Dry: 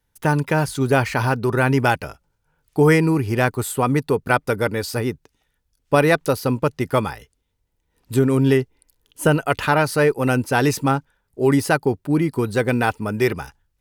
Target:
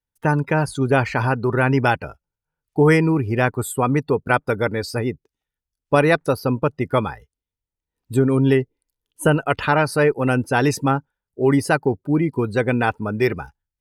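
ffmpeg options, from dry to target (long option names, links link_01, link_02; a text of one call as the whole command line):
ffmpeg -i in.wav -af "afftdn=noise_reduction=17:noise_floor=-35" out.wav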